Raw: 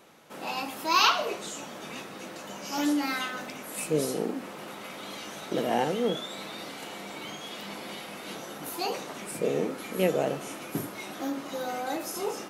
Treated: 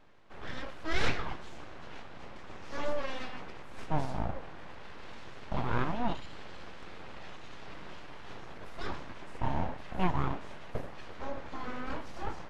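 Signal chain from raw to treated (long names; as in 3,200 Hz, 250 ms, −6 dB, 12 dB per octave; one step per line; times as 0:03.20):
full-wave rectification
head-to-tape spacing loss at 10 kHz 27 dB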